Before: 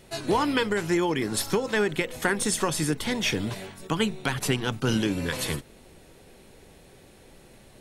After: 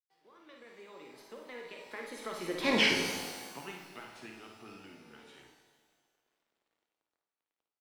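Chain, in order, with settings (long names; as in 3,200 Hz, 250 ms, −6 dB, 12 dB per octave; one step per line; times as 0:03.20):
source passing by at 0:02.75, 48 m/s, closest 3.1 metres
automatic gain control gain up to 12 dB
bit reduction 11 bits
three-way crossover with the lows and the highs turned down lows −16 dB, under 230 Hz, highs −14 dB, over 4,600 Hz
ambience of single reflections 54 ms −6 dB, 73 ms −10.5 dB
reverb with rising layers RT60 1.4 s, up +12 semitones, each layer −8 dB, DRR 4 dB
level −8 dB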